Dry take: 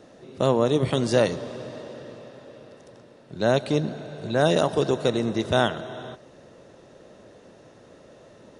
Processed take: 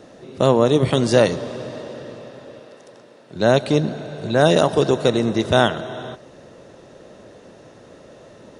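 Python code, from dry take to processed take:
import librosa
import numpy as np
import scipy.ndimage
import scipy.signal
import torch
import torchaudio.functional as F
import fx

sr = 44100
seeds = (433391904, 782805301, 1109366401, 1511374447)

y = fx.highpass(x, sr, hz=330.0, slope=6, at=(2.59, 3.35))
y = y * librosa.db_to_amplitude(5.5)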